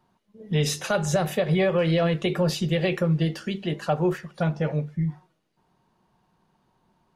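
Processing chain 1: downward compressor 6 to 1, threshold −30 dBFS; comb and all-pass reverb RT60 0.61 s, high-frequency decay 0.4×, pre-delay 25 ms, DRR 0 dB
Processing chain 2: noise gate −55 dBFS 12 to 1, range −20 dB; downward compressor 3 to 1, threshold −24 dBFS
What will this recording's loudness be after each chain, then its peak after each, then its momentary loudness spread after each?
−31.5, −28.5 LKFS; −17.0, −14.0 dBFS; 6, 5 LU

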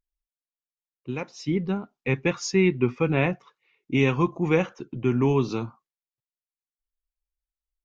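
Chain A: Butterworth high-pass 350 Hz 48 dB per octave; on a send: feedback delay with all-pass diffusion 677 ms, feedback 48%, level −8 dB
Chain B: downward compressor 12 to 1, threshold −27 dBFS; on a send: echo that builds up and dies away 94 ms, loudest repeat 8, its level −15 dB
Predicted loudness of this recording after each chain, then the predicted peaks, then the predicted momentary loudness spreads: −28.5, −33.5 LKFS; −9.5, −15.5 dBFS; 16, 10 LU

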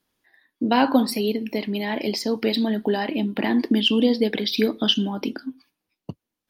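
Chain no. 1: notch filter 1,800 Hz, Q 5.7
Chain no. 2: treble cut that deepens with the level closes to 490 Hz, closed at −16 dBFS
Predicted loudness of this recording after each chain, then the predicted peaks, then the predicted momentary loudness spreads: −22.5, −24.0 LKFS; −5.0, −8.0 dBFS; 12, 13 LU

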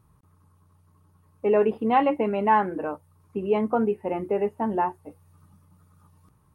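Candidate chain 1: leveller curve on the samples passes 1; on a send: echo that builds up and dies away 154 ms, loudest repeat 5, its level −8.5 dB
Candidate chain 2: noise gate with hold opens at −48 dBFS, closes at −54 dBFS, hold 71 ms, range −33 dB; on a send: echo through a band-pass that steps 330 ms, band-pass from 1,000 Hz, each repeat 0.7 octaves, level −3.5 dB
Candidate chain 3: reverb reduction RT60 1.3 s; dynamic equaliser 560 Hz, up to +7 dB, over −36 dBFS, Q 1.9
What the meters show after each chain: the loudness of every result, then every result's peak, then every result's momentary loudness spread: −20.0, −24.5, −23.0 LKFS; −6.0, −9.5, −7.0 dBFS; 8, 11, 12 LU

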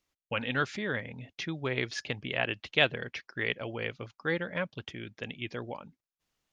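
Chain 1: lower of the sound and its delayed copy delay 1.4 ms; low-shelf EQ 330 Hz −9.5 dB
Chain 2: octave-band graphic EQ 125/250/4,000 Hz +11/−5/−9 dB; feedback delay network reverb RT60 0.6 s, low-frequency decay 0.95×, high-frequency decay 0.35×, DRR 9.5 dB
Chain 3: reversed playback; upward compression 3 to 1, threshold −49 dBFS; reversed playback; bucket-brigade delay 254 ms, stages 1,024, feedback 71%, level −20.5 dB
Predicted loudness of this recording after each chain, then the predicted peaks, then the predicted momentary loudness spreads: −37.5, −33.0, −33.0 LKFS; −12.0, −12.0, −8.0 dBFS; 15, 9, 13 LU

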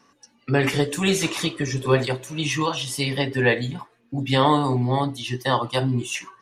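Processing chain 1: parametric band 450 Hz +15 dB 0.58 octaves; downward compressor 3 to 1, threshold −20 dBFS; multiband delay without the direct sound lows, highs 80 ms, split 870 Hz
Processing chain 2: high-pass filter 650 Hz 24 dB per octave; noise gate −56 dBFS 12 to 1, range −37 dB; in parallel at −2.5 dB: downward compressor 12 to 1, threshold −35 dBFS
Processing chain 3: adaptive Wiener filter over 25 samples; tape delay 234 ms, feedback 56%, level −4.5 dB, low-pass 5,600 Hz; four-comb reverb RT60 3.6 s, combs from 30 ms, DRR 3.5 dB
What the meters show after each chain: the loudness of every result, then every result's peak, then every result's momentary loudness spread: −24.5, −25.0, −21.5 LKFS; −9.0, −6.5, −3.5 dBFS; 6, 7, 6 LU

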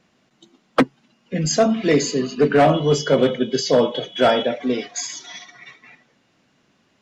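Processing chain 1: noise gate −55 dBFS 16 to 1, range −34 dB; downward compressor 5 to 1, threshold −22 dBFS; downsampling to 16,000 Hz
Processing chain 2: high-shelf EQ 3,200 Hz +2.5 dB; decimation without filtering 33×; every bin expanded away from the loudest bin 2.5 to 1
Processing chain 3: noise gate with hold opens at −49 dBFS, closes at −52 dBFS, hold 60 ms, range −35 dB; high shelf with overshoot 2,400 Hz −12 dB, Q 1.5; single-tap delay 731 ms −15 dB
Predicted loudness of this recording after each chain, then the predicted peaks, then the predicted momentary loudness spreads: −27.0, −26.0, −19.0 LKFS; −10.5, −6.5, −4.5 dBFS; 12, 18, 16 LU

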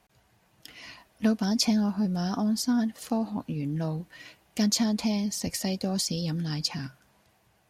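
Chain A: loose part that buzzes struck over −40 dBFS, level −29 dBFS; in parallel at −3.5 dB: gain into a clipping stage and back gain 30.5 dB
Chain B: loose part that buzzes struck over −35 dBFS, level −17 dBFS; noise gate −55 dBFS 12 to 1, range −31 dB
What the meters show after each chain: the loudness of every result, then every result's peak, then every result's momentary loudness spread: −25.5, −26.5 LKFS; −11.0, −11.5 dBFS; 16, 8 LU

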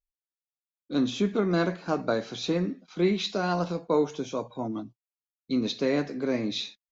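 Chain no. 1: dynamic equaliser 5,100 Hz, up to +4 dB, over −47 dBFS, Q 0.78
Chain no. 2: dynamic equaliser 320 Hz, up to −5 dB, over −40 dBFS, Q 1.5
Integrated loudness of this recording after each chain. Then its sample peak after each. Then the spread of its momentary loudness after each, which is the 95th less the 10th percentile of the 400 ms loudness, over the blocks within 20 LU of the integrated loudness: −28.0, −30.5 LKFS; −13.0, −15.0 dBFS; 8, 8 LU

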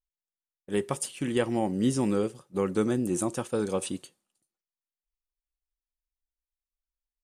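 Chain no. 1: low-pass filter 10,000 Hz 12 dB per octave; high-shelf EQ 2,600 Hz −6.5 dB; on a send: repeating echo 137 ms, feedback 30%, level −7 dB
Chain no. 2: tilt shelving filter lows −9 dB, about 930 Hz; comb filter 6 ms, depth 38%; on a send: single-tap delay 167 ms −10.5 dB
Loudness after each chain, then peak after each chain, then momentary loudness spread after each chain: −29.0, −29.0 LKFS; −13.0, −8.0 dBFS; 7, 9 LU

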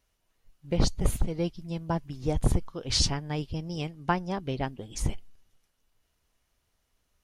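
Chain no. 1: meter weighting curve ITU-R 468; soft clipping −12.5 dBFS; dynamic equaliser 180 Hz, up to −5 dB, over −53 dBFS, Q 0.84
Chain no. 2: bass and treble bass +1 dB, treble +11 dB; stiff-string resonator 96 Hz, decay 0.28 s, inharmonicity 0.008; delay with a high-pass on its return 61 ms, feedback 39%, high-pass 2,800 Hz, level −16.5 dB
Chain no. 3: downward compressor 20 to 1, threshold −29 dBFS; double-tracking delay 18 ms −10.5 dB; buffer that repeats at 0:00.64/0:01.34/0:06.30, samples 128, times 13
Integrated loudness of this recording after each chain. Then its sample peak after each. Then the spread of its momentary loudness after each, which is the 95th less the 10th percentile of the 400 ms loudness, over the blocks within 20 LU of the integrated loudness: −27.5, −36.0, −36.0 LKFS; −12.5, −14.5, −19.5 dBFS; 18, 16, 5 LU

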